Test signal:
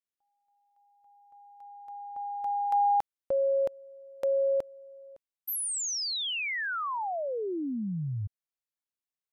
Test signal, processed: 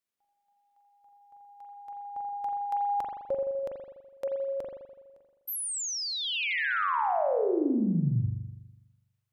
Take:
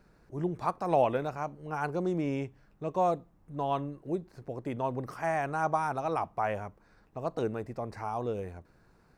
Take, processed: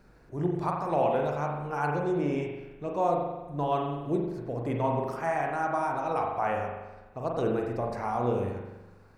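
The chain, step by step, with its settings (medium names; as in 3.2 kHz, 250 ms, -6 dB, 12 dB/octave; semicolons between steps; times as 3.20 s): gain riding within 3 dB 0.5 s; spring tank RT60 1.1 s, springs 41 ms, chirp 65 ms, DRR 0 dB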